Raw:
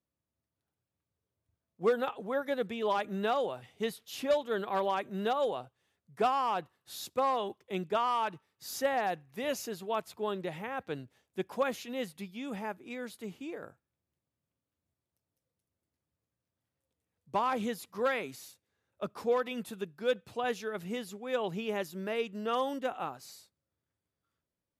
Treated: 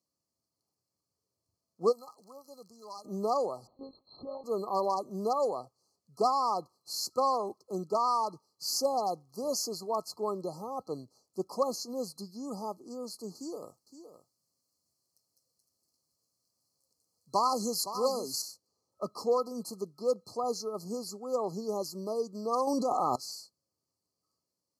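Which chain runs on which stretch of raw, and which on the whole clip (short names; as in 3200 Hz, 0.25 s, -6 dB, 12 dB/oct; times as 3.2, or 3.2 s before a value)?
1.91–3.04 passive tone stack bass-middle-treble 5-5-5 + crackle 120/s -53 dBFS
3.67–4.44 compressor 16:1, threshold -37 dBFS + monotone LPC vocoder at 8 kHz 270 Hz
13.35–18.42 high shelf 2200 Hz +8.5 dB + echo 0.515 s -11.5 dB
22.67–23.16 LPF 11000 Hz + fast leveller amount 100%
whole clip: FFT band-reject 1300–4100 Hz; weighting filter D; gain +1.5 dB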